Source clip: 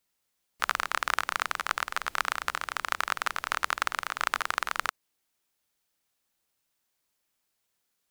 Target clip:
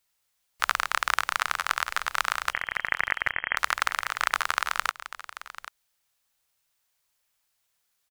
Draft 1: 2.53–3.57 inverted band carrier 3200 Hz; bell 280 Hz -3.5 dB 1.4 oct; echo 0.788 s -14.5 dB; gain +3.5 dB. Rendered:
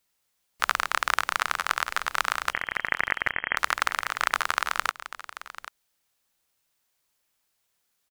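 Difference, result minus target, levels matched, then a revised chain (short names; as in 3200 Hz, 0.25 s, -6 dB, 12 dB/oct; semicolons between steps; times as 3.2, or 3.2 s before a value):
250 Hz band +6.5 dB
2.53–3.57 inverted band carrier 3200 Hz; bell 280 Hz -12 dB 1.4 oct; echo 0.788 s -14.5 dB; gain +3.5 dB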